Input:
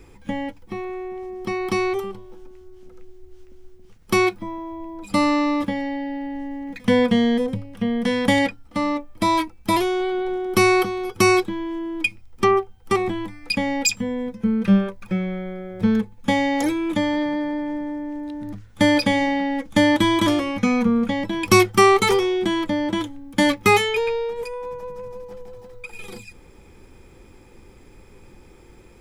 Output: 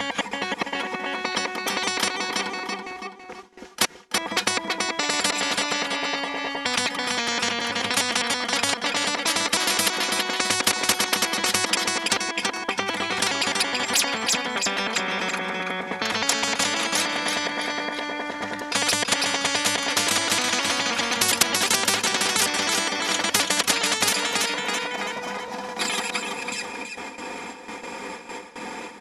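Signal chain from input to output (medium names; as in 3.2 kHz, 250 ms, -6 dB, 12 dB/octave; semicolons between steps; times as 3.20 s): slices played last to first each 104 ms, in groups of 4; cabinet simulation 370–10000 Hz, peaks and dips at 440 Hz -7 dB, 880 Hz +6 dB, 1.8 kHz +4 dB, 8.8 kHz -6 dB; gate with hold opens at -44 dBFS; comb 4.2 ms, depth 72%; feedback delay 330 ms, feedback 32%, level -9 dB; spectrum-flattening compressor 10:1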